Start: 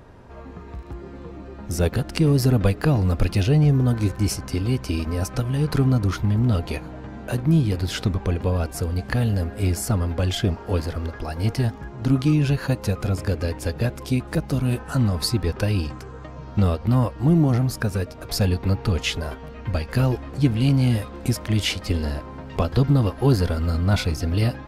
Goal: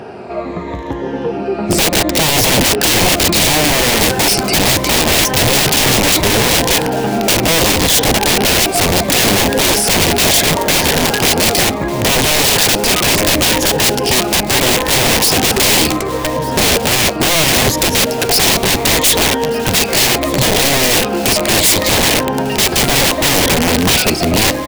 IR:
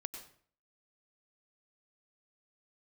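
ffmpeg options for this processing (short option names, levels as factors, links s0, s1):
-filter_complex "[0:a]afftfilt=real='re*pow(10,10/40*sin(2*PI*(1.1*log(max(b,1)*sr/1024/100)/log(2)-(-0.71)*(pts-256)/sr)))':imag='im*pow(10,10/40*sin(2*PI*(1.1*log(max(b,1)*sr/1024/100)/log(2)-(-0.71)*(pts-256)/sr)))':win_size=1024:overlap=0.75,highpass=f=120:p=1,asplit=2[s0][s1];[s1]highpass=f=720:p=1,volume=14.1,asoftclip=type=tanh:threshold=0.562[s2];[s0][s2]amix=inputs=2:normalize=0,lowpass=f=1400:p=1,volume=0.501,dynaudnorm=f=110:g=31:m=1.88,aeval=exprs='(mod(5.01*val(0)+1,2)-1)/5.01':c=same,equalizer=f=1300:w=1.5:g=-9.5,aecho=1:1:1199|2398|3597:0.112|0.037|0.0122,alimiter=level_in=3.35:limit=0.891:release=50:level=0:latency=1,volume=0.891"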